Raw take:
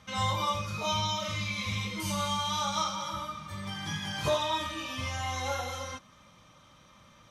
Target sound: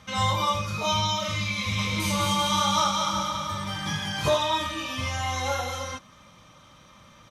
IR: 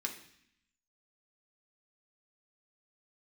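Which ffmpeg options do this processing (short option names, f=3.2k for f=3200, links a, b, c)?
-filter_complex "[0:a]asplit=3[a][b][c];[a]afade=t=out:st=1.77:d=0.02[d];[b]aecho=1:1:210|388.5|540.2|669.2|778.8:0.631|0.398|0.251|0.158|0.1,afade=t=in:st=1.77:d=0.02,afade=t=out:st=4.03:d=0.02[e];[c]afade=t=in:st=4.03:d=0.02[f];[d][e][f]amix=inputs=3:normalize=0,volume=5dB"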